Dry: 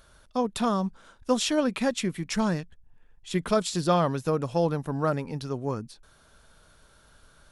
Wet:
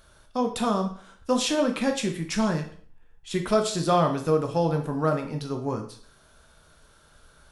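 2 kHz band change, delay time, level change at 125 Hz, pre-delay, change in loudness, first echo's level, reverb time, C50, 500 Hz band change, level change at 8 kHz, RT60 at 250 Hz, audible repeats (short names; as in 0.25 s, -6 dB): +1.0 dB, none, +1.0 dB, 7 ms, +1.5 dB, none, 0.50 s, 9.5 dB, +2.0 dB, +1.5 dB, 0.60 s, none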